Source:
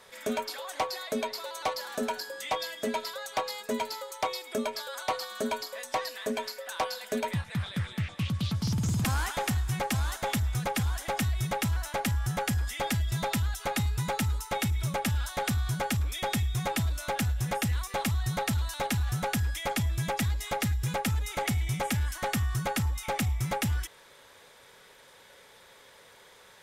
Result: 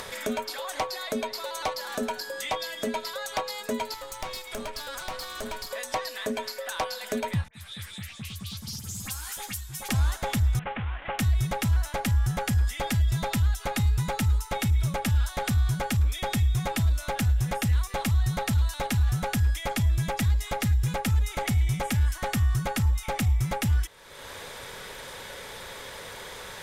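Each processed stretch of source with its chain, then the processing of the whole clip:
0:03.94–0:05.71: parametric band 290 Hz −13 dB 0.81 octaves + tube saturation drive 36 dB, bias 0.75
0:07.48–0:09.89: first-order pre-emphasis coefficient 0.9 + all-pass dispersion highs, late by 60 ms, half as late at 2,300 Hz + string-ensemble chorus
0:10.59–0:11.19: variable-slope delta modulation 16 kbit/s + low-shelf EQ 450 Hz −9.5 dB
whole clip: low-shelf EQ 92 Hz +10.5 dB; upward compression, threshold −27 dBFS

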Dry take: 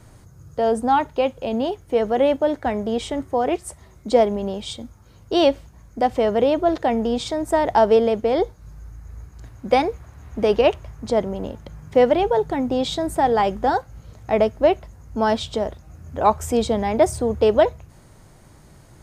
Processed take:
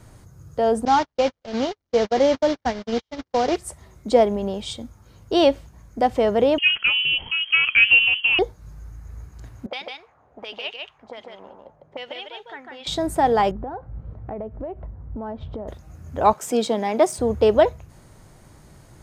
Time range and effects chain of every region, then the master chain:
0:00.85–0:03.56: linear delta modulator 32 kbit/s, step −23 dBFS + notch filter 2,600 Hz, Q 16 + noise gate −23 dBFS, range −53 dB
0:06.58–0:08.39: hum removal 425.2 Hz, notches 36 + voice inversion scrambler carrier 3,200 Hz
0:09.66–0:12.87: envelope filter 460–3,100 Hz, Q 2.8, up, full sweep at −15.5 dBFS + single-tap delay 150 ms −3.5 dB
0:13.51–0:15.68: low-pass filter 1,300 Hz + spectral tilt −1.5 dB per octave + downward compressor 10 to 1, threshold −28 dBFS
0:16.33–0:17.19: gain on one half-wave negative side −3 dB + high-pass filter 190 Hz 24 dB per octave + parametric band 4,100 Hz +2.5 dB 2.3 octaves
whole clip: no processing

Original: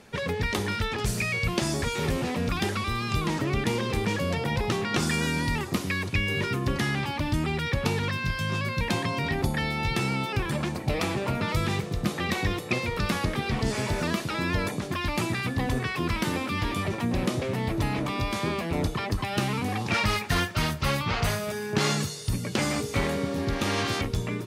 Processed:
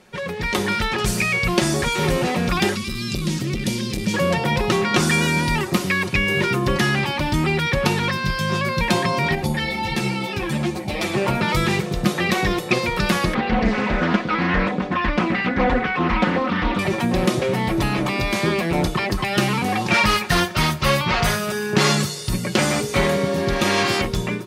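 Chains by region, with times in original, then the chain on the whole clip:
0:02.75–0:04.14: drawn EQ curve 240 Hz 0 dB, 670 Hz −21 dB, 4,900 Hz +2 dB + saturating transformer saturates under 250 Hz
0:09.35–0:11.14: parametric band 1,300 Hz −6 dB 0.63 octaves + string-ensemble chorus
0:13.34–0:16.79: low-pass filter 2,300 Hz + comb filter 4 ms, depth 76% + highs frequency-modulated by the lows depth 0.47 ms
whole clip: bass and treble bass −3 dB, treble −1 dB; comb filter 5.5 ms, depth 49%; automatic gain control gain up to 8 dB

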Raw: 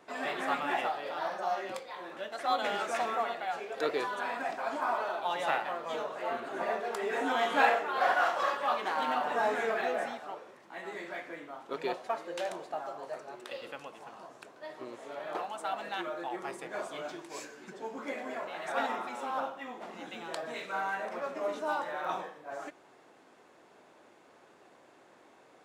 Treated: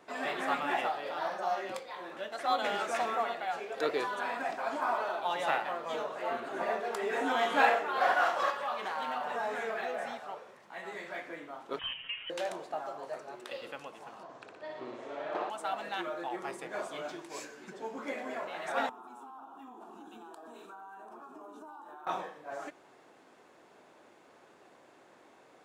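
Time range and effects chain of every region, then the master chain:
0:08.50–0:11.15: parametric band 310 Hz −10.5 dB 0.35 octaves + downward compressor 2 to 1, threshold −34 dBFS
0:11.79–0:12.30: voice inversion scrambler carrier 3,500 Hz + comb filter 7.4 ms, depth 63% + downward compressor 2.5 to 1, threshold −37 dBFS
0:14.23–0:15.50: high-frequency loss of the air 97 metres + flutter between parallel walls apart 10.3 metres, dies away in 0.85 s
0:18.89–0:22.07: parametric band 4,700 Hz −11.5 dB 1.3 octaves + phaser with its sweep stopped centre 550 Hz, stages 6 + downward compressor 10 to 1, threshold −45 dBFS
whole clip: no processing

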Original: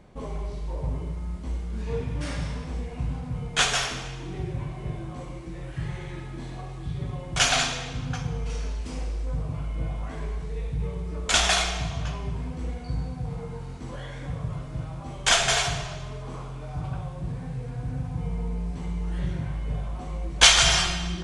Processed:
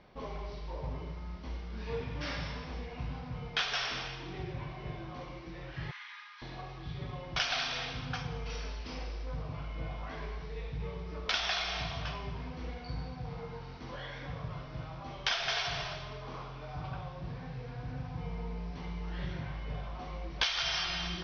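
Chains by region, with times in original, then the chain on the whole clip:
0:05.91–0:06.42: Butterworth high-pass 990 Hz 72 dB per octave + frequency shifter −38 Hz
whole clip: Butterworth low-pass 5,700 Hz 96 dB per octave; low-shelf EQ 470 Hz −10 dB; downward compressor 8 to 1, threshold −29 dBFS

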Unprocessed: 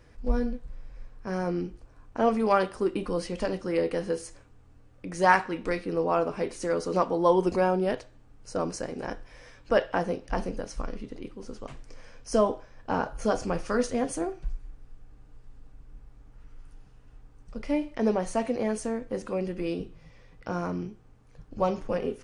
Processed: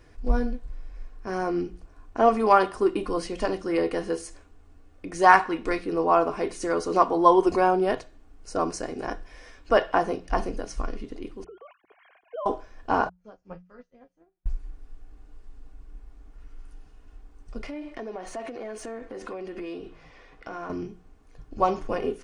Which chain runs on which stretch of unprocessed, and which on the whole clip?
0:11.44–0:12.46: three sine waves on the formant tracks + downward compressor 2 to 1, threshold −45 dBFS
0:13.09–0:14.46: high-frequency loss of the air 200 metres + tuned comb filter 180 Hz, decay 0.19 s, harmonics odd, mix 90% + expander for the loud parts 2.5 to 1, over −51 dBFS
0:17.64–0:20.70: downward compressor 16 to 1, threshold −35 dBFS + mid-hump overdrive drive 14 dB, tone 2,100 Hz, clips at −26 dBFS
whole clip: mains-hum notches 60/120/180 Hz; comb filter 2.8 ms, depth 39%; dynamic equaliser 1,000 Hz, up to +6 dB, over −38 dBFS, Q 1.4; level +1.5 dB

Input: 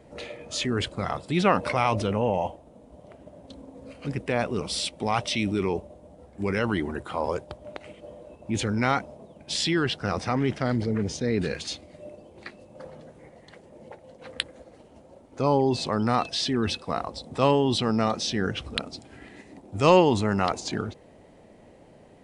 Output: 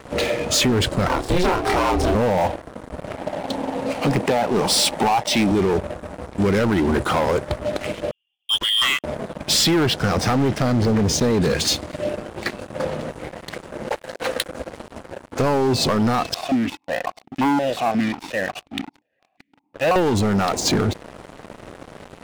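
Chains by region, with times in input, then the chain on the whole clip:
0:01.07–0:02.15: ring modulation 180 Hz + double-tracking delay 27 ms −3.5 dB
0:03.17–0:05.52: high-pass filter 140 Hz + parametric band 840 Hz +12 dB 0.55 octaves
0:08.11–0:09.04: voice inversion scrambler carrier 3,400 Hz + expander for the loud parts 2.5 to 1, over −36 dBFS
0:13.88–0:14.48: bass and treble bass −14 dB, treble +1 dB + leveller curve on the samples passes 1
0:16.34–0:19.96: lower of the sound and its delayed copy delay 1.1 ms + formant filter that steps through the vowels 5.6 Hz
whole clip: dynamic equaliser 2,700 Hz, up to −5 dB, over −43 dBFS, Q 1; downward compressor 10 to 1, threshold −28 dBFS; leveller curve on the samples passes 5

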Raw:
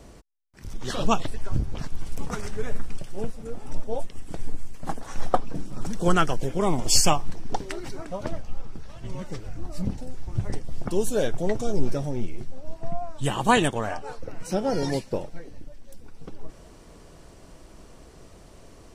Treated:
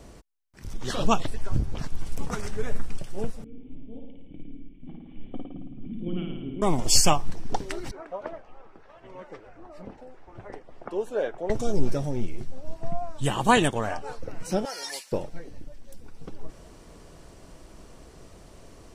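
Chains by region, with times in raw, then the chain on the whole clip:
0:03.44–0:06.62: formant resonators in series i + flutter between parallel walls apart 9.4 metres, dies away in 1.1 s
0:07.91–0:11.50: low-pass filter 3,900 Hz 6 dB per octave + three-way crossover with the lows and the highs turned down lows −21 dB, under 350 Hz, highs −14 dB, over 2,500 Hz
0:14.65–0:15.12: high-pass filter 1,200 Hz + high-shelf EQ 7,600 Hz +10 dB
whole clip: no processing

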